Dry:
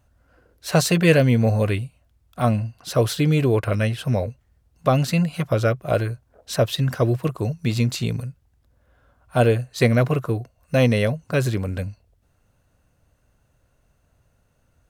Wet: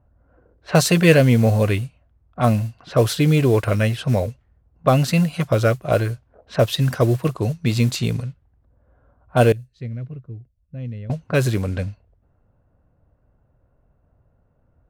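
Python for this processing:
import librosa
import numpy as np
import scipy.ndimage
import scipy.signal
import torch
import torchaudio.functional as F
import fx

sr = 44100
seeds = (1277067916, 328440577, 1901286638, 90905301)

y = fx.mod_noise(x, sr, seeds[0], snr_db=27)
y = fx.tone_stack(y, sr, knobs='10-0-1', at=(9.52, 11.1))
y = fx.env_lowpass(y, sr, base_hz=980.0, full_db=-19.0)
y = F.gain(torch.from_numpy(y), 2.5).numpy()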